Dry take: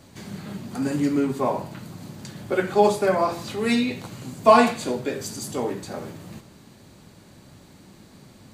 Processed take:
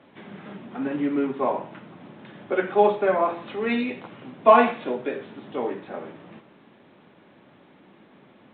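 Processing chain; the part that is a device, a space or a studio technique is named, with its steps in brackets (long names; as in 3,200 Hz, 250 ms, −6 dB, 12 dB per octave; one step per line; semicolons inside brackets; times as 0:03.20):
telephone (band-pass filter 260–3,100 Hz; A-law companding 64 kbit/s 8,000 Hz)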